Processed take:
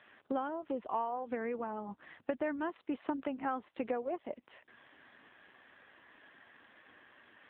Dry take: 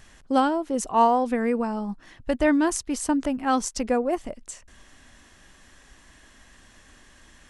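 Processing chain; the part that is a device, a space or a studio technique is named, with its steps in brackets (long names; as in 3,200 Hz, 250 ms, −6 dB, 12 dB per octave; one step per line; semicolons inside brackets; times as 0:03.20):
voicemail (band-pass filter 320–2,900 Hz; downward compressor 6 to 1, threshold −32 dBFS, peak gain reduction 17 dB; AMR narrowband 7.4 kbit/s 8,000 Hz)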